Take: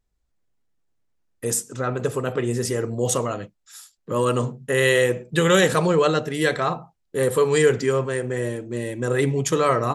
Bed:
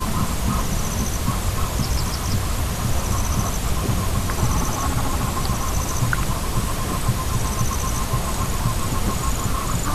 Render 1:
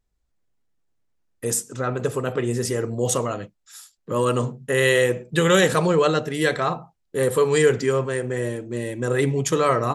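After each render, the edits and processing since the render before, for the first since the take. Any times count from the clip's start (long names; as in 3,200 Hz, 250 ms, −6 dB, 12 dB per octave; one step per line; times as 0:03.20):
no processing that can be heard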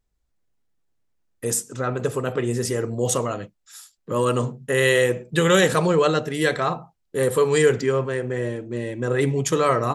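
0:07.81–0:09.21: high-frequency loss of the air 76 metres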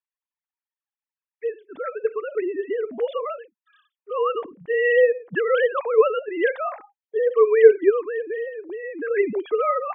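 three sine waves on the formant tracks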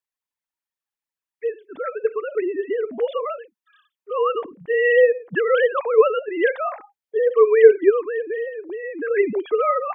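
level +2 dB
brickwall limiter −1 dBFS, peak gain reduction 1.5 dB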